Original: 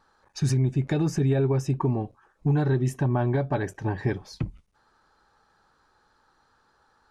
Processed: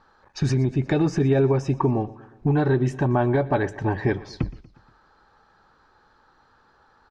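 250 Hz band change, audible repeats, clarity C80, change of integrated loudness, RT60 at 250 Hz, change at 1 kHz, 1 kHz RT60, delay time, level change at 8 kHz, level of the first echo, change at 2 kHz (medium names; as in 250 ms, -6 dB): +4.0 dB, 3, no reverb, +3.0 dB, no reverb, +6.0 dB, no reverb, 119 ms, no reading, -20.0 dB, +5.5 dB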